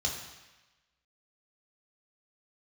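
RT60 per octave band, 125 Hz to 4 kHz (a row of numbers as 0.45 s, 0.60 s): 1.0 s, 1.0 s, 1.0 s, 1.2 s, 1.2 s, 1.1 s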